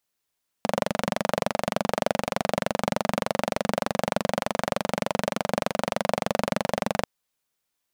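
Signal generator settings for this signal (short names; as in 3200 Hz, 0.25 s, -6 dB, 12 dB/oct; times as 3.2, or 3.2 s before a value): single-cylinder engine model, steady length 6.39 s, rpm 2800, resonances 210/570 Hz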